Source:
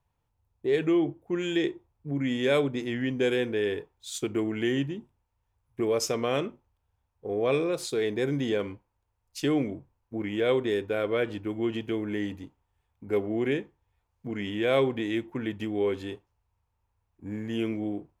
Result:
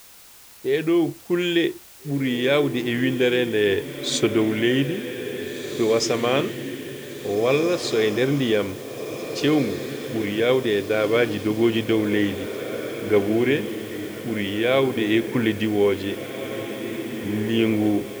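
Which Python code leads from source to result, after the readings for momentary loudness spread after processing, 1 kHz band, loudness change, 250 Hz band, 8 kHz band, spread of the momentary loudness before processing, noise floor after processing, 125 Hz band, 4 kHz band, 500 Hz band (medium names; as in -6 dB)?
10 LU, +7.0 dB, +6.5 dB, +7.5 dB, +7.5 dB, 13 LU, -46 dBFS, +7.0 dB, +10.0 dB, +6.5 dB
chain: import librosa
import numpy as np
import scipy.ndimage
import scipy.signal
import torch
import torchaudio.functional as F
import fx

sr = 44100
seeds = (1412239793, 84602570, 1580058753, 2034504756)

p1 = scipy.signal.sosfilt(scipy.signal.butter(2, 4500.0, 'lowpass', fs=sr, output='sos'), x)
p2 = fx.high_shelf(p1, sr, hz=3300.0, db=8.0)
p3 = fx.rider(p2, sr, range_db=10, speed_s=0.5)
p4 = fx.dmg_noise_colour(p3, sr, seeds[0], colour='white', level_db=-54.0)
p5 = p4 + fx.echo_diffused(p4, sr, ms=1822, feedback_pct=53, wet_db=-9.5, dry=0)
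y = p5 * 10.0 ** (7.0 / 20.0)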